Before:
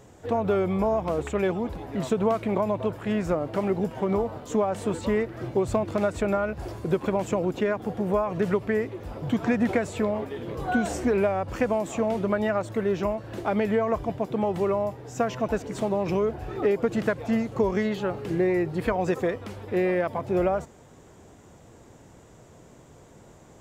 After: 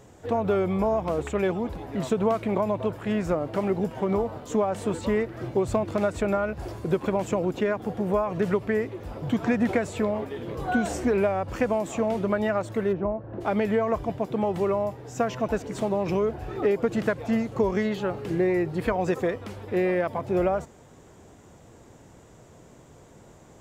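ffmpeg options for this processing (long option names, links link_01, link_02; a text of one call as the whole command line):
ffmpeg -i in.wav -filter_complex "[0:a]asplit=3[link_01][link_02][link_03];[link_01]afade=type=out:start_time=12.92:duration=0.02[link_04];[link_02]lowpass=1000,afade=type=in:start_time=12.92:duration=0.02,afade=type=out:start_time=13.4:duration=0.02[link_05];[link_03]afade=type=in:start_time=13.4:duration=0.02[link_06];[link_04][link_05][link_06]amix=inputs=3:normalize=0" out.wav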